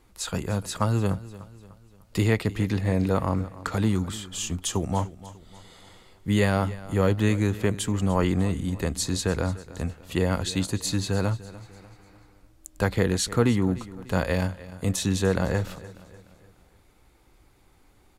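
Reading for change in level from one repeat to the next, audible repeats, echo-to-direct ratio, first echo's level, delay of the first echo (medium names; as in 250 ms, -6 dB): -7.0 dB, 3, -16.5 dB, -17.5 dB, 297 ms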